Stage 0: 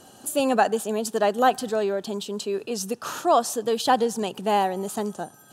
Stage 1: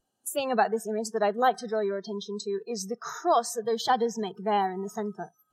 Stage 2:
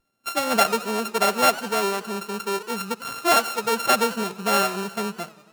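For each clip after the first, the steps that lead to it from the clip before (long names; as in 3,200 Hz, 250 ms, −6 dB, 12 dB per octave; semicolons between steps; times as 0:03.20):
noise reduction from a noise print of the clip's start 27 dB; level −3.5 dB
samples sorted by size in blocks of 32 samples; feedback echo with a swinging delay time 92 ms, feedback 65%, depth 161 cents, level −19 dB; level +4.5 dB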